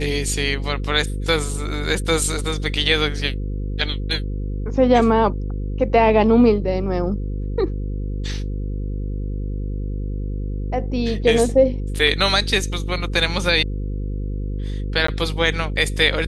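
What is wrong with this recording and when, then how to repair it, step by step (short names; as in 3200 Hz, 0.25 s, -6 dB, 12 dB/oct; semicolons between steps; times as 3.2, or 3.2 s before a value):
buzz 50 Hz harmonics 10 -25 dBFS
15.07–15.08 gap 14 ms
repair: de-hum 50 Hz, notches 10; interpolate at 15.07, 14 ms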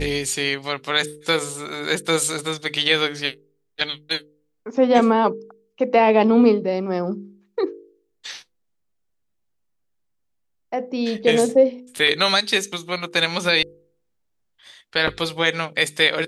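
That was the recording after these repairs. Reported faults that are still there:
none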